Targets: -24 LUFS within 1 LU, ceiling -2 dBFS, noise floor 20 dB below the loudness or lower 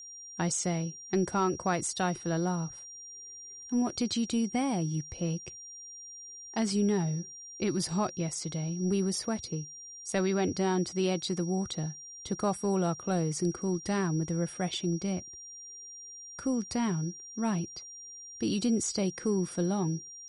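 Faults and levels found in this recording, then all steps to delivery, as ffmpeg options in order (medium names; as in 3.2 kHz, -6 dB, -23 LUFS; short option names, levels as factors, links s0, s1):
steady tone 5.7 kHz; tone level -44 dBFS; loudness -31.5 LUFS; peak level -17.5 dBFS; loudness target -24.0 LUFS
-> -af "bandreject=f=5700:w=30"
-af "volume=2.37"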